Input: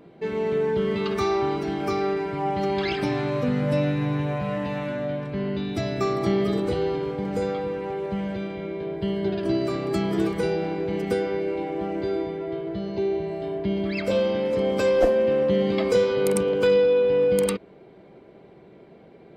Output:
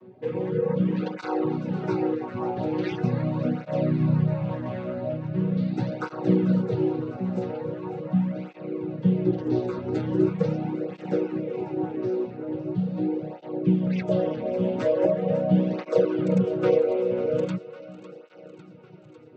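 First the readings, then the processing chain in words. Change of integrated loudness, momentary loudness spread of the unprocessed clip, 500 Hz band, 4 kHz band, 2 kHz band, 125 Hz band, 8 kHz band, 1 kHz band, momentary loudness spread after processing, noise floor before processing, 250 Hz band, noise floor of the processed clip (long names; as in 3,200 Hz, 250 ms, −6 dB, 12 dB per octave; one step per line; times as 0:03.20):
−1.5 dB, 9 LU, −4.0 dB, below −10 dB, −8.0 dB, +3.5 dB, can't be measured, −5.0 dB, 9 LU, −49 dBFS, +2.0 dB, −48 dBFS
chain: channel vocoder with a chord as carrier major triad, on B2
reverb reduction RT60 0.67 s
on a send: feedback echo with a high-pass in the loop 550 ms, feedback 67%, high-pass 420 Hz, level −13.5 dB
on the sum: through-zero flanger with one copy inverted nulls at 0.41 Hz, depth 6.9 ms
level +4.5 dB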